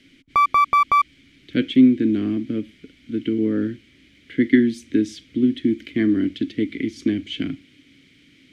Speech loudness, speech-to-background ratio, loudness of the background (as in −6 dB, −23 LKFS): −21.5 LKFS, −3.5 dB, −18.0 LKFS